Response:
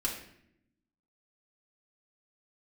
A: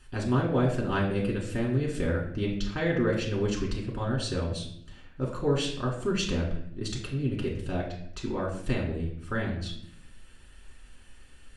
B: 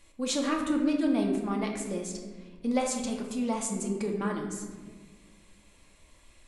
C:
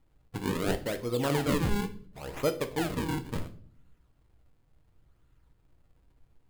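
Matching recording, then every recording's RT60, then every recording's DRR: A; 0.75, 1.6, 0.50 s; -3.5, 0.5, 6.5 dB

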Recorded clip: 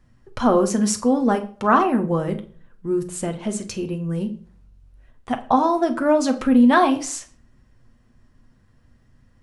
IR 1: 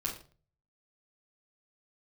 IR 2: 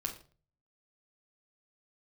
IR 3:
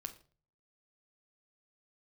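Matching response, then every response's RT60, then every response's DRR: 3; not exponential, not exponential, not exponential; -5.0, 0.0, 5.0 dB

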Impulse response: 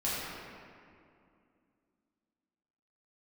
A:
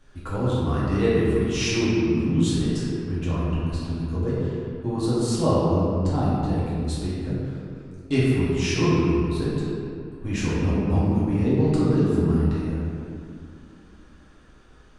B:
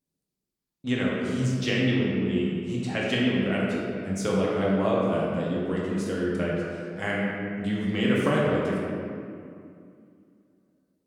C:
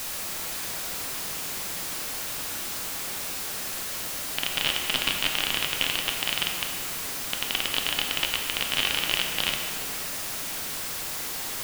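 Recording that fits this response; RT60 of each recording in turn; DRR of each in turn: A; 2.4, 2.4, 2.4 s; -9.5, -5.5, 1.5 dB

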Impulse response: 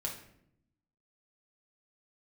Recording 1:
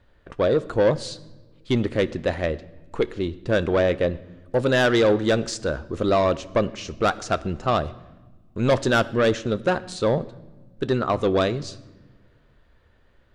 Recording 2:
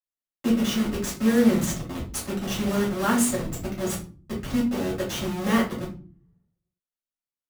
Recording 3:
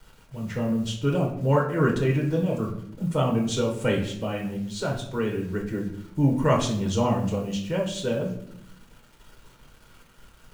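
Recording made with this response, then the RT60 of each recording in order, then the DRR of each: 3; not exponential, not exponential, 0.70 s; 14.0, -6.5, -1.0 dB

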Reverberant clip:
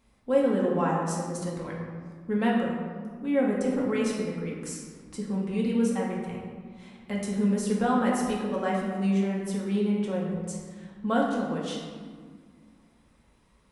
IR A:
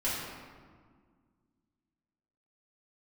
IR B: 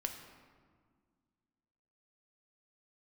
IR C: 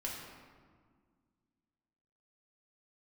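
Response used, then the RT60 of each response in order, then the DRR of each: C; 1.8, 1.8, 1.8 s; -10.5, 4.0, -4.0 dB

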